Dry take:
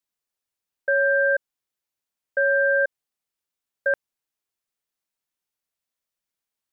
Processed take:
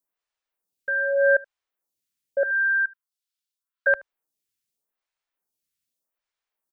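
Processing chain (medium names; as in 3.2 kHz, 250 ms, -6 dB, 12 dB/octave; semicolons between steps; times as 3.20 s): 2.43–3.87 s: rippled Chebyshev high-pass 990 Hz, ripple 6 dB; delay 76 ms -23.5 dB; lamp-driven phase shifter 0.83 Hz; trim +4 dB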